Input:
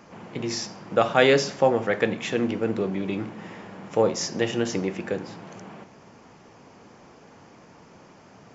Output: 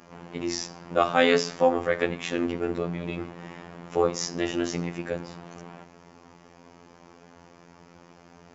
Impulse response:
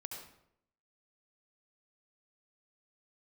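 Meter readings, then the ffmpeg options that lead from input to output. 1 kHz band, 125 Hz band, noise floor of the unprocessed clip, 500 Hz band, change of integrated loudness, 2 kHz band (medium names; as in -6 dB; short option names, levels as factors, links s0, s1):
-0.5 dB, -3.5 dB, -51 dBFS, -2.5 dB, -2.0 dB, -2.0 dB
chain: -af "afftfilt=real='hypot(re,im)*cos(PI*b)':imag='0':win_size=2048:overlap=0.75,adynamicequalizer=threshold=0.00355:dfrequency=1200:dqfactor=5.9:tfrequency=1200:tqfactor=5.9:attack=5:release=100:ratio=0.375:range=2.5:mode=boostabove:tftype=bell,volume=1.19"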